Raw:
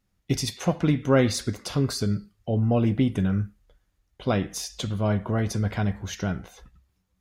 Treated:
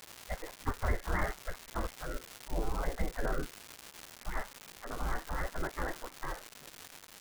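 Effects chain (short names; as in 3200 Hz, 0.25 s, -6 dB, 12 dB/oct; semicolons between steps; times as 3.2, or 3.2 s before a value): steep low-pass 2000 Hz 96 dB/oct; spectral gate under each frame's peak -25 dB weak; tilt -3 dB/oct; crackle 360/s -40 dBFS; gain +6.5 dB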